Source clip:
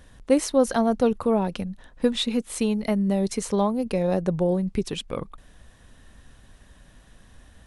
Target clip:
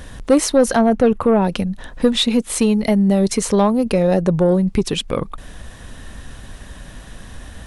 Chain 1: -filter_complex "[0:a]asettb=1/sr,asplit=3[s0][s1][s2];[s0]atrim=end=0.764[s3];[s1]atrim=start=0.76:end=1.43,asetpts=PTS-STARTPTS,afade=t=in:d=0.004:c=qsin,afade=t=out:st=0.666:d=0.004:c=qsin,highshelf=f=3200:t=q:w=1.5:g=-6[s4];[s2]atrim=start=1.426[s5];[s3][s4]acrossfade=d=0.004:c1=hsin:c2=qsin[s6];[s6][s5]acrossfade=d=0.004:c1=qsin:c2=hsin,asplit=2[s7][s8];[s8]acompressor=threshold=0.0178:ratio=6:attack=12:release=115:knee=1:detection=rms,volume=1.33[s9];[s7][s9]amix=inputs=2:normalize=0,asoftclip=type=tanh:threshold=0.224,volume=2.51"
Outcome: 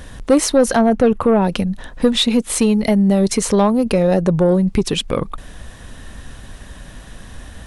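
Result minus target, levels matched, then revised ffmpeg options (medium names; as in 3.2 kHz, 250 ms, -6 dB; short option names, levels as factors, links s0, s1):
compression: peak gain reduction -7 dB
-filter_complex "[0:a]asettb=1/sr,asplit=3[s0][s1][s2];[s0]atrim=end=0.764[s3];[s1]atrim=start=0.76:end=1.43,asetpts=PTS-STARTPTS,afade=t=in:d=0.004:c=qsin,afade=t=out:st=0.666:d=0.004:c=qsin,highshelf=f=3200:t=q:w=1.5:g=-6[s4];[s2]atrim=start=1.426[s5];[s3][s4]acrossfade=d=0.004:c1=hsin:c2=qsin[s6];[s6][s5]acrossfade=d=0.004:c1=qsin:c2=hsin,asplit=2[s7][s8];[s8]acompressor=threshold=0.00668:ratio=6:attack=12:release=115:knee=1:detection=rms,volume=1.33[s9];[s7][s9]amix=inputs=2:normalize=0,asoftclip=type=tanh:threshold=0.224,volume=2.51"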